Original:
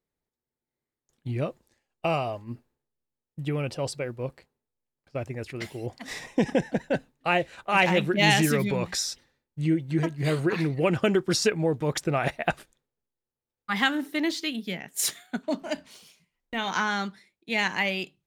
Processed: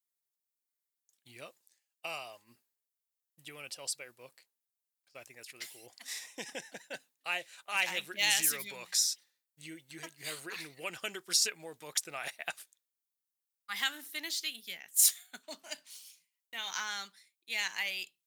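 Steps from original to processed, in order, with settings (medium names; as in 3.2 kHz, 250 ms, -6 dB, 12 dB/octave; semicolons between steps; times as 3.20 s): differentiator; trim +2.5 dB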